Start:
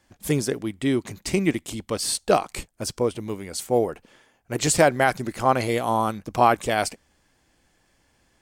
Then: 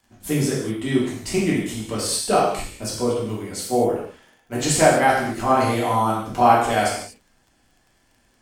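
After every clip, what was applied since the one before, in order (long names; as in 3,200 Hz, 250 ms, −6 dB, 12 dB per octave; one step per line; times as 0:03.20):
reverb whose tail is shaped and stops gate 270 ms falling, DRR −6.5 dB
surface crackle 31 per second −40 dBFS
level −5 dB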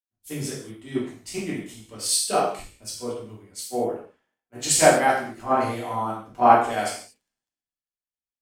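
low-shelf EQ 120 Hz −7.5 dB
multiband upward and downward expander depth 100%
level −6.5 dB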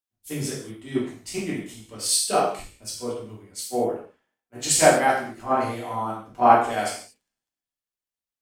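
speech leveller within 3 dB 2 s
level −1.5 dB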